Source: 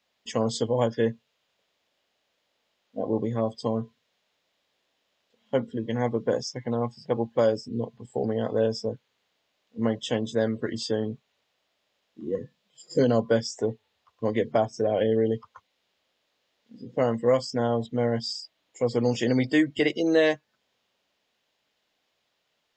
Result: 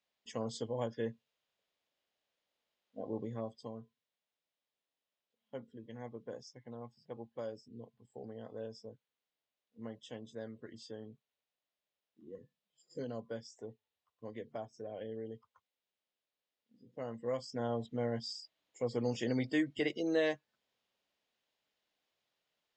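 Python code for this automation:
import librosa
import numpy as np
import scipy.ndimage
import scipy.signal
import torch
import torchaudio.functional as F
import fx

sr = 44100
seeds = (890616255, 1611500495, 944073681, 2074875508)

y = fx.gain(x, sr, db=fx.line((3.35, -13.0), (3.8, -20.0), (16.89, -20.0), (17.7, -10.5)))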